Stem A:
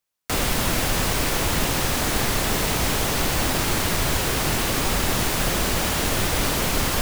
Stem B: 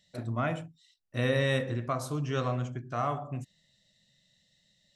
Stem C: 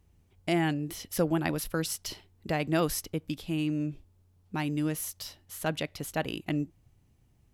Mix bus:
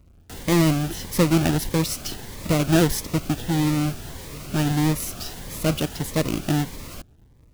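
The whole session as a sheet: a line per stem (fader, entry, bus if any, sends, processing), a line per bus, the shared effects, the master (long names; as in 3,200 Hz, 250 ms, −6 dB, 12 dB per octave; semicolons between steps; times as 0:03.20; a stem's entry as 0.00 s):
−13.5 dB, 0.00 s, no send, brickwall limiter −14.5 dBFS, peak gain reduction 5.5 dB
−15.0 dB, 2.20 s, no send, no processing
+3.0 dB, 0.00 s, no send, each half-wave held at its own peak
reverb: not used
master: low-shelf EQ 390 Hz +3.5 dB; phaser whose notches keep moving one way rising 1.6 Hz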